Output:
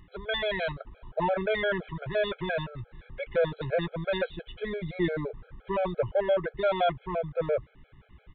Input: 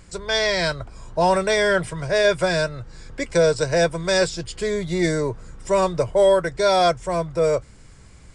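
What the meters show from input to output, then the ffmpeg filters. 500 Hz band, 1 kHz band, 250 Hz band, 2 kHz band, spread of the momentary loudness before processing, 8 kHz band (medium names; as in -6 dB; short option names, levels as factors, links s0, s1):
-9.0 dB, -9.5 dB, -8.5 dB, -9.0 dB, 10 LU, under -40 dB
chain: -af "asoftclip=type=tanh:threshold=0.237,aresample=8000,aresample=44100,afftfilt=real='re*gt(sin(2*PI*5.8*pts/sr)*(1-2*mod(floor(b*sr/1024/430),2)),0)':imag='im*gt(sin(2*PI*5.8*pts/sr)*(1-2*mod(floor(b*sr/1024/430),2)),0)':win_size=1024:overlap=0.75,volume=0.631"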